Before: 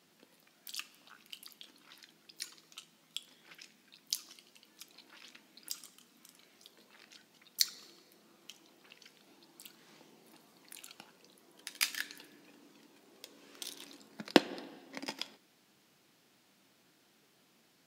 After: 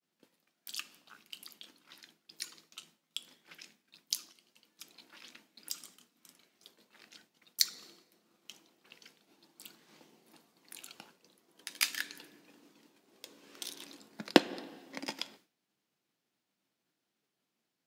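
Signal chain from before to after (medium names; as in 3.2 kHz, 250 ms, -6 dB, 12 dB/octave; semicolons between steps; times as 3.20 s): expander -56 dBFS; 4.24–4.75 s: compression 12:1, threshold -59 dBFS, peak gain reduction 9.5 dB; trim +1.5 dB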